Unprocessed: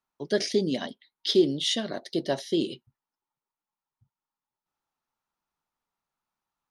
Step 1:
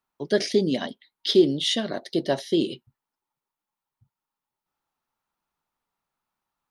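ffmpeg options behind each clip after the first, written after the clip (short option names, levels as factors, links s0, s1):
-af "equalizer=f=6400:w=1.1:g=-3.5,volume=1.5"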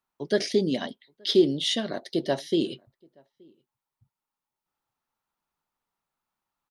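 -filter_complex "[0:a]asplit=2[s0][s1];[s1]adelay=874.6,volume=0.0316,highshelf=f=4000:g=-19.7[s2];[s0][s2]amix=inputs=2:normalize=0,volume=0.794"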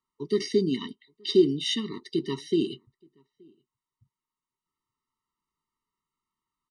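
-af "aresample=22050,aresample=44100,afftfilt=real='re*eq(mod(floor(b*sr/1024/450),2),0)':imag='im*eq(mod(floor(b*sr/1024/450),2),0)':win_size=1024:overlap=0.75"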